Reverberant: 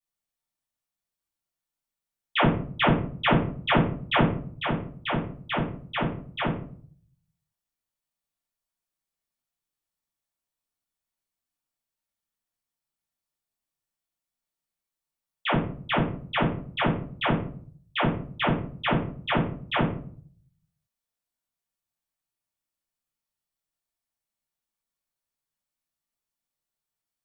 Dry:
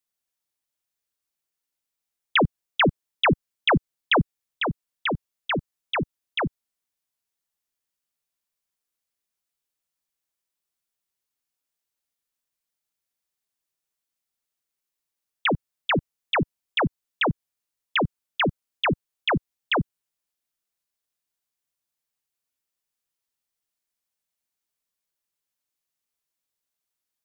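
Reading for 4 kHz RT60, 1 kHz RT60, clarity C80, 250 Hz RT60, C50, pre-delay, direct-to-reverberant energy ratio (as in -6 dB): 0.30 s, 0.45 s, 10.5 dB, 0.70 s, 4.5 dB, 7 ms, -10.5 dB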